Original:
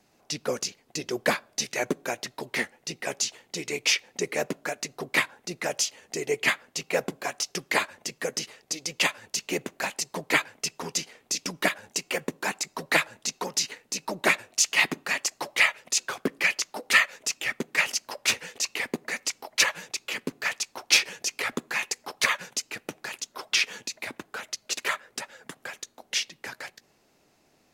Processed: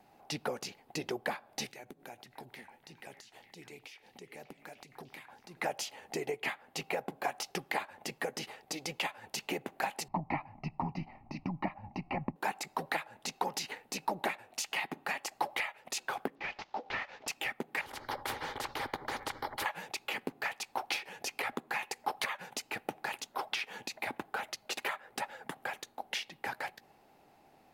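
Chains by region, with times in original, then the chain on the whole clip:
1.71–5.57 s: peaking EQ 950 Hz -10 dB 2.7 oct + compression 10:1, threshold -45 dBFS + repeats whose band climbs or falls 299 ms, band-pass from 940 Hz, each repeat 0.7 oct, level -6.5 dB
10.08–12.36 s: boxcar filter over 6 samples + tilt EQ -4.5 dB/octave + static phaser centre 2.3 kHz, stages 8
16.35–17.28 s: CVSD coder 32 kbps + compression 1.5:1, threshold -52 dBFS
17.81–19.66 s: distance through air 340 m + static phaser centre 710 Hz, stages 6 + spectrum-flattening compressor 4:1
whole clip: peaking EQ 6.4 kHz -11 dB 1.1 oct; compression 12:1, threshold -33 dBFS; peaking EQ 810 Hz +11.5 dB 0.35 oct

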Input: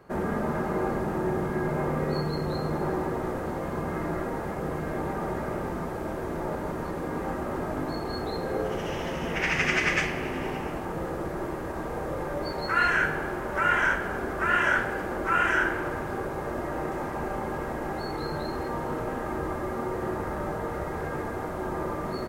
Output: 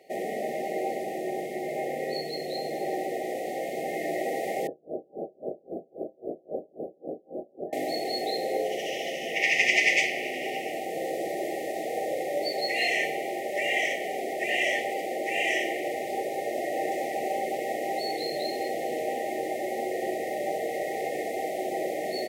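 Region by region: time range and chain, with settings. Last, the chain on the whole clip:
4.67–7.73 s: inverse Chebyshev band-stop 2.1–4.9 kHz, stop band 80 dB + distance through air 100 m + logarithmic tremolo 3.7 Hz, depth 33 dB
whole clip: FFT band-reject 800–1800 Hz; gain riding within 5 dB 2 s; high-pass 580 Hz 12 dB/octave; trim +6.5 dB

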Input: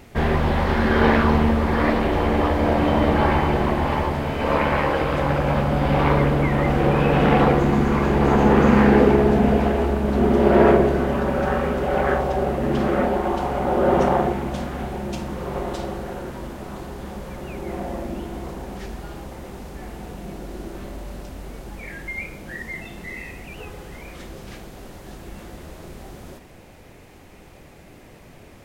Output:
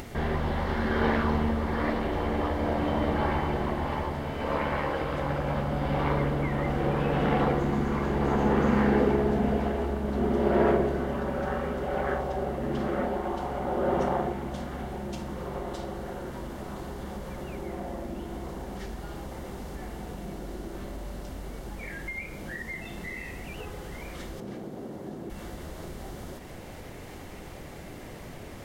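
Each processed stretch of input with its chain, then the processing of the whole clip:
24.40–25.30 s: high-pass 210 Hz + tilt shelf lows +10 dB, about 780 Hz
whole clip: band-stop 2.5 kHz, Q 13; upward compressor, threshold -21 dBFS; trim -8.5 dB

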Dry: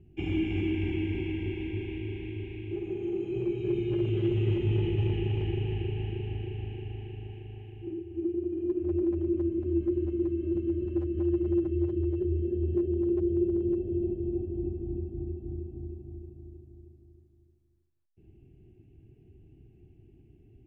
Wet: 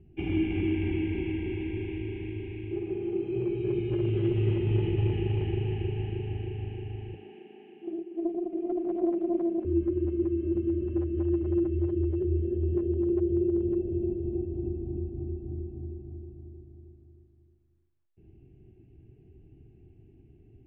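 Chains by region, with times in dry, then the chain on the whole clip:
7.14–9.65 s: steep high-pass 170 Hz 72 dB/octave + loudspeaker Doppler distortion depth 0.21 ms
whole clip: low-pass 2.7 kHz 12 dB/octave; hum notches 50/100/150/200/250/300/350 Hz; trim +2 dB

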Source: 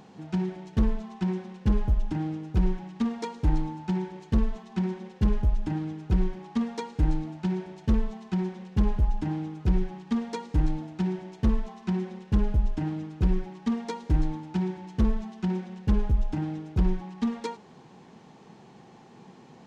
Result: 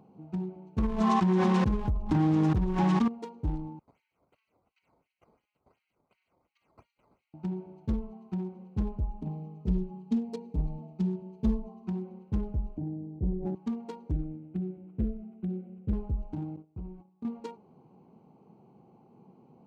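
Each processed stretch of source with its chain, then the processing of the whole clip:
0.78–3.08 s: peaking EQ 1.1 kHz +8.5 dB 0.38 oct + level flattener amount 100%
3.79–7.34 s: Chebyshev high-pass 1.9 kHz, order 4 + treble shelf 2.3 kHz -5 dB + decimation with a swept rate 9×, swing 160% 2.8 Hz
9.21–11.87 s: peaking EQ 1.5 kHz -10.5 dB 0.86 oct + comb 4.7 ms, depth 84%
12.77–13.55 s: inverse Chebyshev low-pass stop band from 1.4 kHz + decay stretcher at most 33 dB/s
14.11–15.93 s: Butterworth band-stop 1 kHz, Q 1.2 + decimation joined by straight lines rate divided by 8×
16.56–17.25 s: gate -37 dBFS, range -19 dB + compression 2:1, threshold -37 dBFS
whole clip: local Wiener filter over 25 samples; high-pass 47 Hz; trim -5.5 dB

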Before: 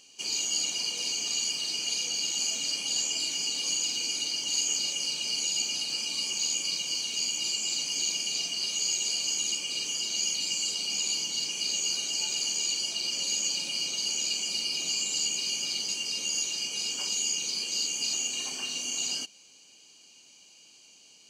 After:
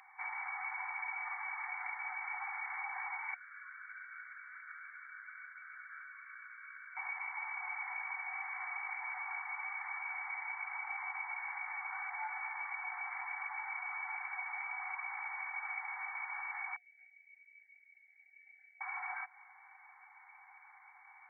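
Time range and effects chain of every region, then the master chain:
3.34–6.97 s: two resonant band-passes 780 Hz, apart 1.9 oct + static phaser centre 880 Hz, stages 6
16.76–18.81 s: Chebyshev band-stop 290–3800 Hz, order 3 + doubling 24 ms -4 dB
whole clip: FFT band-pass 730–2300 Hz; compression 2:1, threshold -57 dBFS; trim +15.5 dB

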